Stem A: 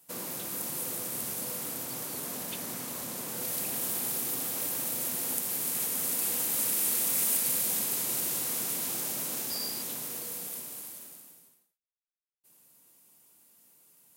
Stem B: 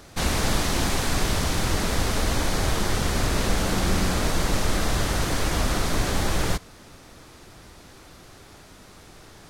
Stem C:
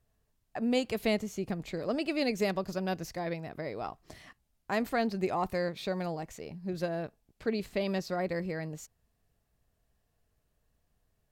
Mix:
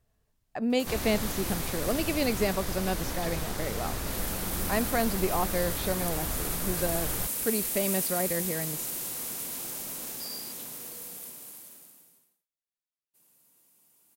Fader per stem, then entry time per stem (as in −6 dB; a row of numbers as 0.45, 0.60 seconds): −3.5, −11.0, +2.0 decibels; 0.70, 0.70, 0.00 seconds